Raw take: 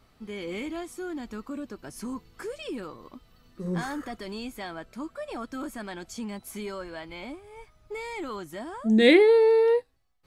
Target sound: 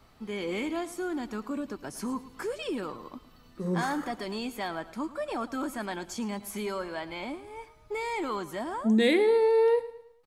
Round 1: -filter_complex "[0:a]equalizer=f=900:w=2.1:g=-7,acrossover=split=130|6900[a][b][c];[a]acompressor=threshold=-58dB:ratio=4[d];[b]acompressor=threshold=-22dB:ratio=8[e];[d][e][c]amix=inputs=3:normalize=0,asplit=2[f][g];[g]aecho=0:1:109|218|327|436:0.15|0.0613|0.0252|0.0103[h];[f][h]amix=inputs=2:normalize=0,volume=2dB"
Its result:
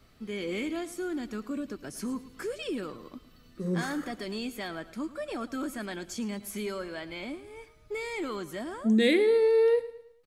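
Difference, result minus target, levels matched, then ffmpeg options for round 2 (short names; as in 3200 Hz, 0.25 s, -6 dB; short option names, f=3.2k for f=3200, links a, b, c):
1000 Hz band -7.0 dB
-filter_complex "[0:a]equalizer=f=900:w=2.1:g=4,acrossover=split=130|6900[a][b][c];[a]acompressor=threshold=-58dB:ratio=4[d];[b]acompressor=threshold=-22dB:ratio=8[e];[d][e][c]amix=inputs=3:normalize=0,asplit=2[f][g];[g]aecho=0:1:109|218|327|436:0.15|0.0613|0.0252|0.0103[h];[f][h]amix=inputs=2:normalize=0,volume=2dB"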